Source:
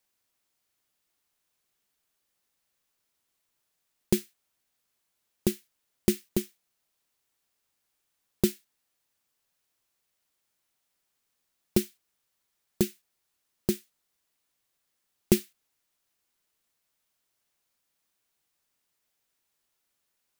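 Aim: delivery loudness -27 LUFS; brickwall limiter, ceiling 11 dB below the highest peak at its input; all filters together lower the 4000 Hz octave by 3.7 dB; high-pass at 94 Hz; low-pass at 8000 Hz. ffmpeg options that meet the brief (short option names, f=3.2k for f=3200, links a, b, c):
-af "highpass=94,lowpass=8k,equalizer=f=4k:t=o:g=-4.5,volume=11.5dB,alimiter=limit=-7.5dB:level=0:latency=1"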